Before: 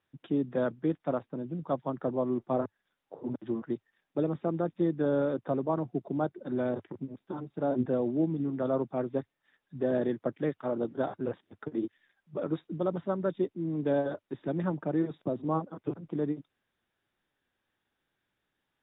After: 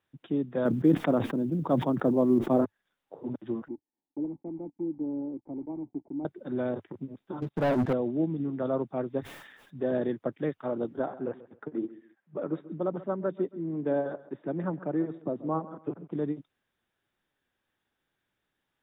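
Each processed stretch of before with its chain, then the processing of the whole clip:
0:00.65–0:02.65: parametric band 260 Hz +8.5 dB 1.8 octaves + floating-point word with a short mantissa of 6 bits + level that may fall only so fast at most 65 dB per second
0:03.68–0:06.25: one scale factor per block 3 bits + formant resonators in series u + one half of a high-frequency compander encoder only
0:07.42–0:07.93: parametric band 340 Hz −3.5 dB 1.2 octaves + leveller curve on the samples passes 3
0:09.20–0:09.92: low-shelf EQ 170 Hz −3.5 dB + level that may fall only so fast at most 40 dB per second
0:10.99–0:16.12: band-pass filter 150–2,100 Hz + repeating echo 136 ms, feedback 26%, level −17 dB
whole clip: no processing

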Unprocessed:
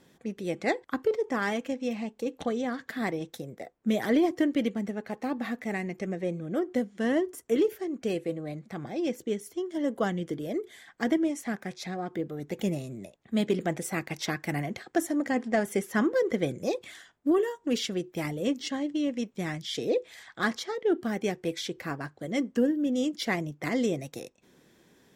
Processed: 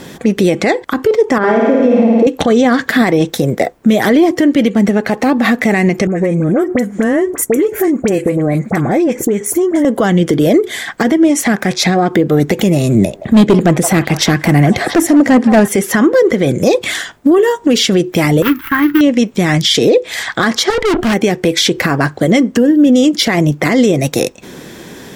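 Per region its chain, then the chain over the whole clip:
0:01.38–0:02.27: resonant band-pass 410 Hz, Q 0.87 + flutter between parallel walls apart 9.1 metres, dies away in 1.3 s
0:06.07–0:09.85: flat-topped bell 3,900 Hz −10.5 dB 1.2 octaves + downward compressor 12 to 1, threshold −37 dBFS + all-pass dispersion highs, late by 49 ms, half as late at 1,600 Hz
0:12.95–0:15.68: low-shelf EQ 420 Hz +8 dB + gain into a clipping stage and back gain 18 dB + echo through a band-pass that steps 170 ms, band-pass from 850 Hz, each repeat 0.7 octaves, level −10 dB
0:18.42–0:19.01: gap after every zero crossing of 0.12 ms + noise gate −45 dBFS, range −9 dB + drawn EQ curve 120 Hz 0 dB, 220 Hz −16 dB, 330 Hz −4 dB, 650 Hz −30 dB, 930 Hz 0 dB, 1,400 Hz +9 dB, 2,200 Hz −1 dB, 3,500 Hz −11 dB, 7,500 Hz −22 dB, 14,000 Hz +6 dB
0:20.70–0:21.14: parametric band 1,700 Hz +6 dB 2.4 octaves + tube saturation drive 39 dB, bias 0.65
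whole clip: downward compressor 6 to 1, threshold −33 dBFS; boost into a limiter +29.5 dB; level −1 dB

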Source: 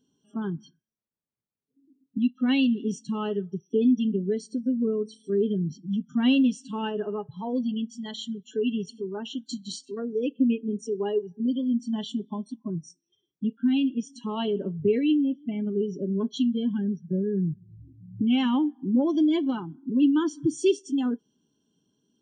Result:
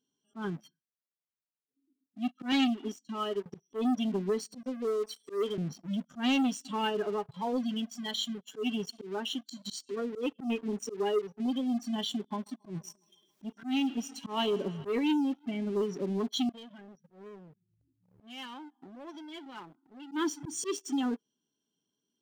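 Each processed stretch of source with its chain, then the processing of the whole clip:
0:02.52–0:03.46: comb filter 3.1 ms, depth 91% + expander for the loud parts, over −38 dBFS
0:04.63–0:05.58: high-pass filter 480 Hz + leveller curve on the samples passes 1
0:12.21–0:14.90: upward compression, threshold −43 dBFS + feedback echo with a high-pass in the loop 138 ms, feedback 80%, high-pass 190 Hz, level −21.5 dB
0:16.49–0:20.12: downward compressor 12 to 1, threshold −34 dBFS + low-shelf EQ 350 Hz −11 dB
whole clip: leveller curve on the samples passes 2; low-shelf EQ 390 Hz −11.5 dB; volume swells 114 ms; level −3.5 dB

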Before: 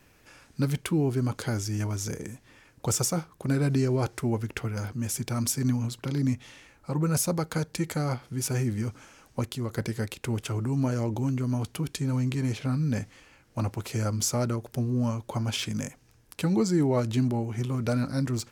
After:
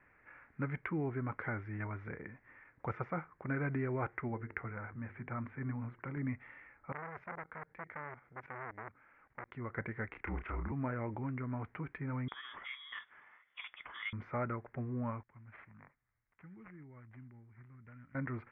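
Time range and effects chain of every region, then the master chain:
0:04.28–0:06.17: high-frequency loss of the air 490 metres + mains-hum notches 50/100/150/200/250/300/350/400/450 Hz + one half of a high-frequency compander encoder only
0:06.92–0:09.52: output level in coarse steps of 15 dB + saturating transformer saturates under 1,900 Hz
0:10.08–0:10.72: frequency shifter −45 Hz + double-tracking delay 31 ms −4.5 dB
0:12.28–0:14.13: tilt shelving filter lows +3.5 dB, about 1,200 Hz + voice inversion scrambler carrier 3,500 Hz
0:15.23–0:18.15: guitar amp tone stack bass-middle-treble 6-0-2 + linearly interpolated sample-rate reduction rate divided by 6×
whole clip: Chebyshev low-pass filter 2,100 Hz, order 5; tilt shelving filter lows −8.5 dB, about 930 Hz; level −4 dB

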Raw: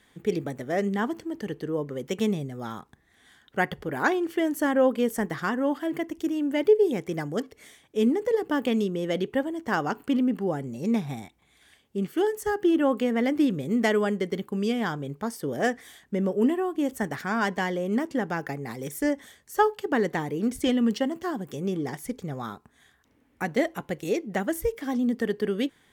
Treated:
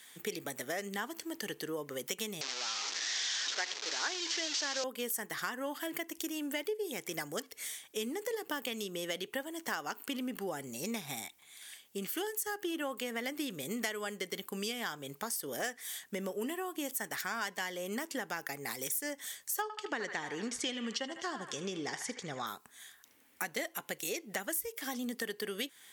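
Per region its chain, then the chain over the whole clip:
0:02.41–0:04.84: linear delta modulator 32 kbit/s, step −27.5 dBFS + high-pass filter 290 Hz 24 dB per octave + high-shelf EQ 4,000 Hz +11 dB
0:19.62–0:22.47: low-pass filter 6,900 Hz 24 dB per octave + feedback echo with a band-pass in the loop 76 ms, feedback 58%, band-pass 1,500 Hz, level −8 dB
whole clip: spectral tilt +4.5 dB per octave; downward compressor 4 to 1, threshold −35 dBFS

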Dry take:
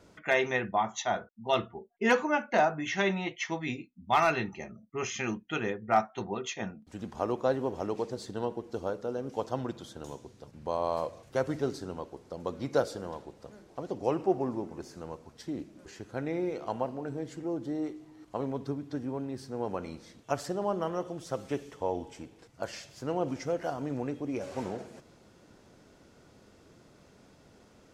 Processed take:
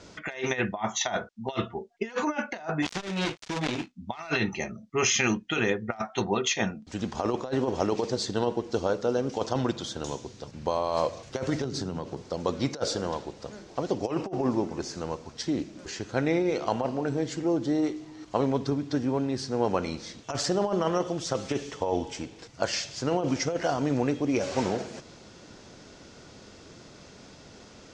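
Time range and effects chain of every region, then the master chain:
0:02.82–0:03.92: gap after every zero crossing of 0.28 ms + compressor whose output falls as the input rises −36 dBFS + saturating transformer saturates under 710 Hz
0:11.64–0:12.22: high-pass filter 46 Hz + parametric band 140 Hz +10.5 dB 1.6 octaves + downward compressor, threshold −36 dBFS
whole clip: low-pass filter 6,600 Hz 24 dB per octave; high-shelf EQ 3,200 Hz +10.5 dB; compressor whose output falls as the input rises −31 dBFS, ratio −0.5; level +5.5 dB

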